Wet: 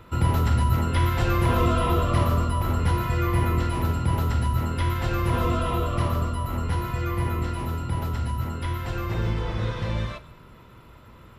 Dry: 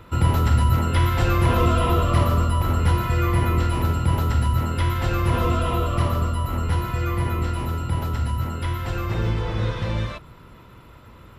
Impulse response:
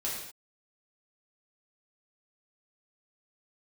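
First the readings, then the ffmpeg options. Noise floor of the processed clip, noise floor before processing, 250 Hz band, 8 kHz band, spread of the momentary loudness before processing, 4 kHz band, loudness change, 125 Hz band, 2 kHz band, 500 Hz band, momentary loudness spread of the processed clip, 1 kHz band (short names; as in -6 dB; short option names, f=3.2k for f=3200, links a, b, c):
-49 dBFS, -46 dBFS, -2.0 dB, -3.0 dB, 7 LU, -3.0 dB, -3.0 dB, -3.0 dB, -2.5 dB, -2.0 dB, 7 LU, -2.0 dB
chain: -filter_complex "[0:a]asplit=2[a][b];[1:a]atrim=start_sample=2205[c];[b][c]afir=irnorm=-1:irlink=0,volume=-15.5dB[d];[a][d]amix=inputs=2:normalize=0,volume=-3.5dB"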